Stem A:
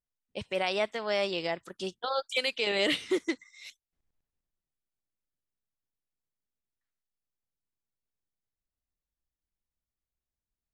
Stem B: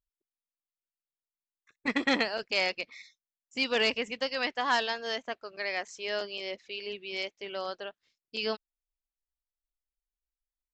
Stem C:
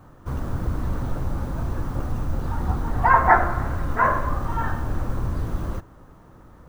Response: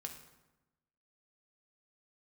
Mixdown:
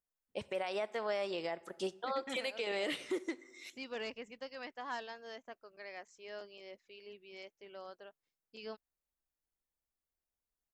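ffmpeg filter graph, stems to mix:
-filter_complex "[0:a]bass=frequency=250:gain=-9,treble=frequency=4000:gain=-1,volume=0dB,asplit=2[link_01][link_02];[link_02]volume=-10dB[link_03];[1:a]adelay=200,volume=-12.5dB[link_04];[3:a]atrim=start_sample=2205[link_05];[link_03][link_05]afir=irnorm=-1:irlink=0[link_06];[link_01][link_04][link_06]amix=inputs=3:normalize=0,equalizer=frequency=3700:width_type=o:width=1.8:gain=-7,alimiter=level_in=3dB:limit=-24dB:level=0:latency=1:release=246,volume=-3dB"

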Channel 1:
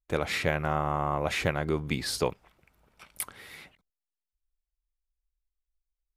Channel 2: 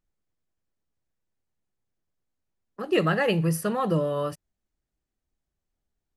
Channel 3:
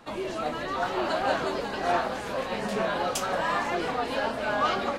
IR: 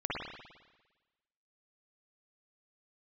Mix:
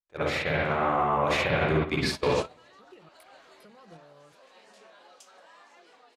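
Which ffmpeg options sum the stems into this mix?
-filter_complex "[0:a]bandreject=frequency=106.9:width_type=h:width=4,bandreject=frequency=213.8:width_type=h:width=4,bandreject=frequency=320.7:width_type=h:width=4,bandreject=frequency=427.6:width_type=h:width=4,bandreject=frequency=534.5:width_type=h:width=4,bandreject=frequency=641.4:width_type=h:width=4,bandreject=frequency=748.3:width_type=h:width=4,bandreject=frequency=855.2:width_type=h:width=4,bandreject=frequency=962.1:width_type=h:width=4,bandreject=frequency=1069:width_type=h:width=4,bandreject=frequency=1175.9:width_type=h:width=4,bandreject=frequency=1282.8:width_type=h:width=4,bandreject=frequency=1389.7:width_type=h:width=4,bandreject=frequency=1496.6:width_type=h:width=4,bandreject=frequency=1603.5:width_type=h:width=4,bandreject=frequency=1710.4:width_type=h:width=4,bandreject=frequency=1817.3:width_type=h:width=4,bandreject=frequency=1924.2:width_type=h:width=4,bandreject=frequency=2031.1:width_type=h:width=4,bandreject=frequency=2138:width_type=h:width=4,bandreject=frequency=2244.9:width_type=h:width=4,bandreject=frequency=2351.8:width_type=h:width=4,bandreject=frequency=2458.7:width_type=h:width=4,bandreject=frequency=2565.6:width_type=h:width=4,bandreject=frequency=2672.5:width_type=h:width=4,bandreject=frequency=2779.4:width_type=h:width=4,bandreject=frequency=2886.3:width_type=h:width=4,bandreject=frequency=2993.2:width_type=h:width=4,bandreject=frequency=3100.1:width_type=h:width=4,bandreject=frequency=3207:width_type=h:width=4,bandreject=frequency=3313.9:width_type=h:width=4,bandreject=frequency=3420.8:width_type=h:width=4,bandreject=frequency=3527.7:width_type=h:width=4,bandreject=frequency=3634.6:width_type=h:width=4,volume=1.5dB,asplit=2[link_01][link_02];[link_02]volume=-5dB[link_03];[1:a]acompressor=threshold=-26dB:ratio=16,volume=-3.5dB,asplit=3[link_04][link_05][link_06];[link_04]atrim=end=3.09,asetpts=PTS-STARTPTS,afade=type=out:start_time=3.086:duration=0.004:curve=hsin[link_07];[link_05]atrim=start=3.09:end=3.6,asetpts=PTS-STARTPTS,volume=0[link_08];[link_06]atrim=start=3.6,asetpts=PTS-STARTPTS,afade=type=in:duration=0.004:curve=hsin[link_09];[link_07][link_08][link_09]concat=n=3:v=0:a=1,asplit=2[link_10][link_11];[2:a]crystalizer=i=3:c=0,adelay=2050,volume=1dB[link_12];[link_11]apad=whole_len=310279[link_13];[link_12][link_13]sidechaincompress=threshold=-39dB:ratio=12:attack=24:release=417[link_14];[link_01][link_14]amix=inputs=2:normalize=0,highpass=340,lowpass=7000,acompressor=threshold=-34dB:ratio=2.5,volume=0dB[link_15];[3:a]atrim=start_sample=2205[link_16];[link_03][link_16]afir=irnorm=-1:irlink=0[link_17];[link_10][link_15][link_17]amix=inputs=3:normalize=0,agate=range=-27dB:threshold=-26dB:ratio=16:detection=peak,dynaudnorm=framelen=220:gausssize=11:maxgain=6.5dB,alimiter=limit=-15.5dB:level=0:latency=1:release=28"

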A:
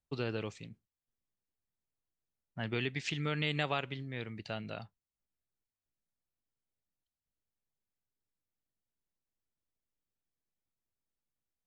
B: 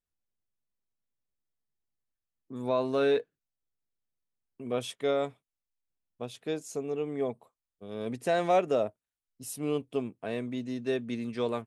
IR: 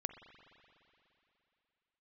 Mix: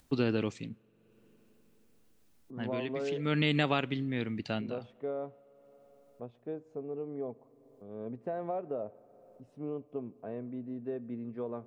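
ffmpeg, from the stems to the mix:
-filter_complex "[0:a]equalizer=frequency=260:width_type=o:width=0.91:gain=9.5,volume=2.5dB,asplit=2[link_01][link_02];[link_02]volume=-20.5dB[link_03];[1:a]lowpass=1000,acompressor=threshold=-27dB:ratio=6,volume=-7.5dB,asplit=3[link_04][link_05][link_06];[link_05]volume=-7.5dB[link_07];[link_06]apad=whole_len=514469[link_08];[link_01][link_08]sidechaincompress=threshold=-54dB:ratio=3:attack=41:release=124[link_09];[2:a]atrim=start_sample=2205[link_10];[link_03][link_07]amix=inputs=2:normalize=0[link_11];[link_11][link_10]afir=irnorm=-1:irlink=0[link_12];[link_09][link_04][link_12]amix=inputs=3:normalize=0,acompressor=mode=upward:threshold=-50dB:ratio=2.5"

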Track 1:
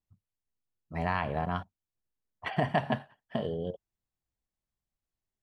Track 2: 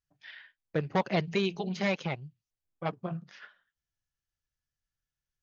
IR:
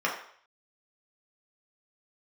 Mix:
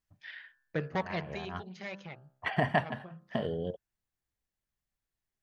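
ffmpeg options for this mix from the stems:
-filter_complex "[0:a]volume=-0.5dB[link_01];[1:a]bandreject=frequency=65.67:width_type=h:width=4,bandreject=frequency=131.34:width_type=h:width=4,bandreject=frequency=197.01:width_type=h:width=4,bandreject=frequency=262.68:width_type=h:width=4,bandreject=frequency=328.35:width_type=h:width=4,bandreject=frequency=394.02:width_type=h:width=4,bandreject=frequency=459.69:width_type=h:width=4,bandreject=frequency=525.36:width_type=h:width=4,bandreject=frequency=591.03:width_type=h:width=4,bandreject=frequency=656.7:width_type=h:width=4,bandreject=frequency=722.37:width_type=h:width=4,bandreject=frequency=788.04:width_type=h:width=4,bandreject=frequency=853.71:width_type=h:width=4,bandreject=frequency=919.38:width_type=h:width=4,bandreject=frequency=985.05:width_type=h:width=4,bandreject=frequency=1050.72:width_type=h:width=4,bandreject=frequency=1116.39:width_type=h:width=4,bandreject=frequency=1182.06:width_type=h:width=4,bandreject=frequency=1247.73:width_type=h:width=4,bandreject=frequency=1313.4:width_type=h:width=4,bandreject=frequency=1379.07:width_type=h:width=4,bandreject=frequency=1444.74:width_type=h:width=4,bandreject=frequency=1510.41:width_type=h:width=4,bandreject=frequency=1576.08:width_type=h:width=4,bandreject=frequency=1641.75:width_type=h:width=4,bandreject=frequency=1707.42:width_type=h:width=4,bandreject=frequency=1773.09:width_type=h:width=4,volume=-1.5dB,afade=type=out:start_time=0.62:duration=0.78:silence=0.281838,asplit=2[link_02][link_03];[link_03]apad=whole_len=239335[link_04];[link_01][link_04]sidechaincompress=threshold=-51dB:ratio=8:attack=16:release=136[link_05];[link_05][link_02]amix=inputs=2:normalize=0,equalizer=frequency=1800:width=2:gain=4.5"

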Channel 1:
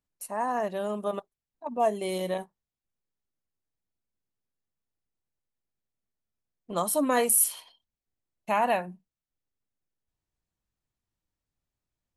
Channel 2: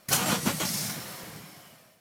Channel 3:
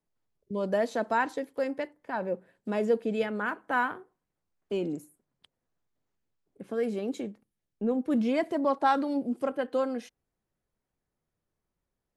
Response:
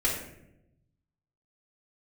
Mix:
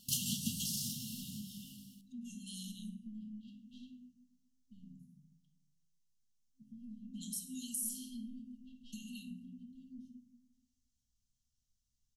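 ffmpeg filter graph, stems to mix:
-filter_complex "[0:a]equalizer=frequency=6100:width=1.5:gain=11.5,acompressor=threshold=-36dB:ratio=2,adelay=450,volume=-4.5dB,asplit=2[link_01][link_02];[link_02]volume=-10dB[link_03];[1:a]volume=-1dB,asplit=2[link_04][link_05];[link_05]volume=-18.5dB[link_06];[2:a]afwtdn=0.0224,equalizer=frequency=940:width=0.58:gain=-9,asoftclip=type=tanh:threshold=-29dB,volume=-15.5dB,asplit=2[link_07][link_08];[link_08]volume=-6dB[link_09];[3:a]atrim=start_sample=2205[link_10];[link_03][link_06][link_09]amix=inputs=3:normalize=0[link_11];[link_11][link_10]afir=irnorm=-1:irlink=0[link_12];[link_01][link_04][link_07][link_12]amix=inputs=4:normalize=0,afftfilt=real='re*(1-between(b*sr/4096,260,2700))':imag='im*(1-between(b*sr/4096,260,2700))':win_size=4096:overlap=0.75,acompressor=threshold=-48dB:ratio=1.5"

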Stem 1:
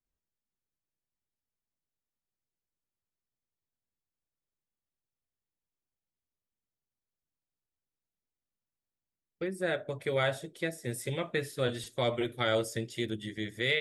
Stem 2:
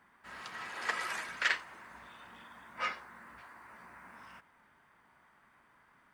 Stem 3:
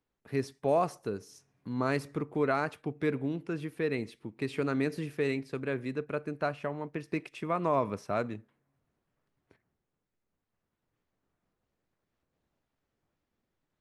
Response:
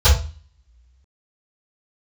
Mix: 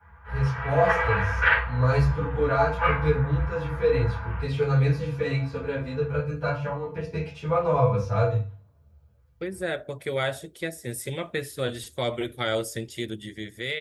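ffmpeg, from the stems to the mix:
-filter_complex "[0:a]highshelf=frequency=11000:gain=9.5,volume=-2dB[link_01];[1:a]lowpass=frequency=2400:width=0.5412,lowpass=frequency=2400:width=1.3066,volume=-8dB,asplit=2[link_02][link_03];[link_03]volume=-3.5dB[link_04];[2:a]asplit=2[link_05][link_06];[link_06]adelay=9,afreqshift=-0.69[link_07];[link_05][link_07]amix=inputs=2:normalize=1,volume=-8dB,asplit=2[link_08][link_09];[link_09]volume=-9.5dB[link_10];[3:a]atrim=start_sample=2205[link_11];[link_04][link_10]amix=inputs=2:normalize=0[link_12];[link_12][link_11]afir=irnorm=-1:irlink=0[link_13];[link_01][link_02][link_08][link_13]amix=inputs=4:normalize=0,dynaudnorm=framelen=340:gausssize=5:maxgain=4dB"

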